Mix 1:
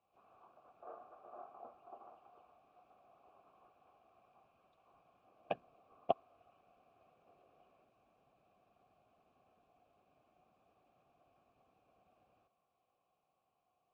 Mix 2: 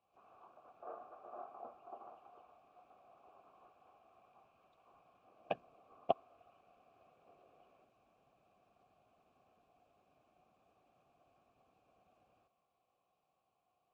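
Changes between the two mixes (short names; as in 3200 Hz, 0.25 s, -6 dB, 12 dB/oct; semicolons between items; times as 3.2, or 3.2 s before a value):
speech: remove air absorption 64 m; background +3.0 dB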